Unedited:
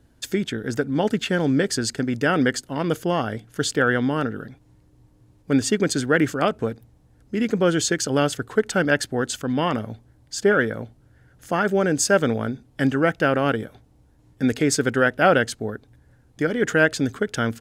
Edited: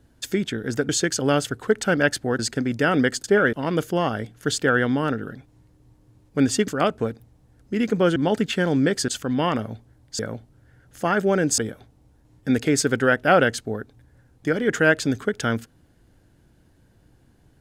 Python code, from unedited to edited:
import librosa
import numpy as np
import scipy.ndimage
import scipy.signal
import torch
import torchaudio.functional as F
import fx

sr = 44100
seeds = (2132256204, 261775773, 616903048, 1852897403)

y = fx.edit(x, sr, fx.swap(start_s=0.89, length_s=0.92, other_s=7.77, other_length_s=1.5),
    fx.cut(start_s=5.81, length_s=0.48),
    fx.move(start_s=10.38, length_s=0.29, to_s=2.66),
    fx.cut(start_s=12.06, length_s=1.46), tone=tone)